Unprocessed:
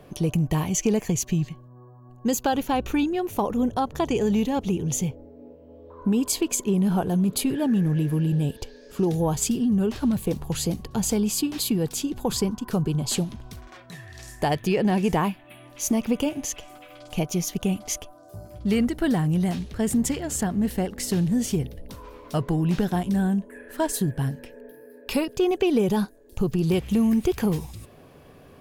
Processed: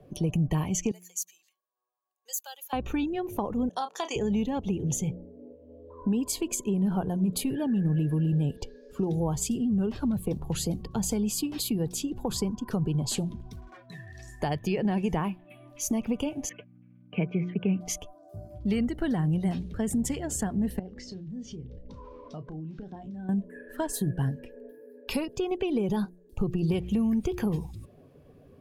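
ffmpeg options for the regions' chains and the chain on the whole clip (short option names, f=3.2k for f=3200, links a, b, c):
-filter_complex "[0:a]asettb=1/sr,asplit=3[a][b][c];[a]atrim=end=0.914[d];[b]atrim=start=0.91:end=2.73,asetpts=PTS-STARTPTS,afade=t=in:d=0.004:c=qsin,afade=t=out:st=1.816:d=0.004:c=qsin,highpass=f=440:w=0.5412,highpass=f=440:w=1.3066,aderivative[e];[c]atrim=start=2.726[f];[d][e]acrossfade=d=0.004:c1=hsin:c2=qsin[g];[g][f]acrossfade=d=0.004:c1=qsin:c2=hsin,asettb=1/sr,asplit=3[h][i][j];[h]atrim=end=3.694[k];[i]atrim=start=3.69:end=4.16,asetpts=PTS-STARTPTS,afade=t=in:d=0.004:c=qsin,afade=t=out:st=0.466:d=0.004:c=qsin,highpass=560,lowpass=6.8k,aemphasis=mode=production:type=75fm,asplit=2[l][m];[m]adelay=31,volume=-9dB[n];[l][n]amix=inputs=2:normalize=0,atrim=end_sample=20727[o];[j]atrim=start=4.156[p];[k][o]acrossfade=d=0.004:c1=hsin:c2=qsin[q];[q][p]acrossfade=d=0.004:c1=qsin:c2=hsin,asettb=1/sr,asplit=3[r][s][t];[r]atrim=end=16.494[u];[s]atrim=start=16.49:end=17.81,asetpts=PTS-STARTPTS,afade=t=in:d=0.004:c=qsin,afade=t=out:st=1.316:d=0.004:c=qsin,agate=range=-21dB:threshold=-41dB:ratio=16:release=100:detection=peak,aeval=exprs='val(0)+0.00562*(sin(2*PI*60*n/s)+sin(2*PI*2*60*n/s)/2+sin(2*PI*3*60*n/s)/3+sin(2*PI*4*60*n/s)/4+sin(2*PI*5*60*n/s)/5)':c=same,highpass=f=120:w=0.5412,highpass=f=120:w=1.3066,equalizer=f=180:t=q:w=4:g=4,equalizer=f=430:t=q:w=4:g=6,equalizer=f=770:t=q:w=4:g=-7,equalizer=f=1.6k:t=q:w=4:g=7,equalizer=f=2.3k:t=q:w=4:g=7,lowpass=f=2.7k:w=0.5412,lowpass=f=2.7k:w=1.3066[v];[t]atrim=start=17.806[w];[u][v]acrossfade=d=0.004:c1=hsin:c2=qsin[x];[x][w]acrossfade=d=0.004:c1=qsin:c2=hsin,asettb=1/sr,asplit=3[y][z][aa];[y]atrim=end=20.794[ab];[z]atrim=start=20.79:end=23.29,asetpts=PTS-STARTPTS,afade=t=in:d=0.004:c=qsin,afade=t=out:st=2.496:d=0.004:c=qsin,lowpass=f=6.2k:w=0.5412,lowpass=f=6.2k:w=1.3066,acompressor=threshold=-38dB:ratio=4:attack=3.2:release=140:knee=1:detection=peak,asplit=2[ac][ad];[ad]adelay=32,volume=-10dB[ae];[ac][ae]amix=inputs=2:normalize=0,atrim=end_sample=110250[af];[aa]atrim=start=23.286[ag];[ab][af]acrossfade=d=0.004:c1=hsin:c2=qsin[ah];[ah][ag]acrossfade=d=0.004:c1=qsin:c2=hsin,afftdn=nr=13:nf=-43,bandreject=f=178.5:t=h:w=4,bandreject=f=357:t=h:w=4,acrossover=split=170[ai][aj];[aj]acompressor=threshold=-29dB:ratio=2[ak];[ai][ak]amix=inputs=2:normalize=0,volume=-1.5dB"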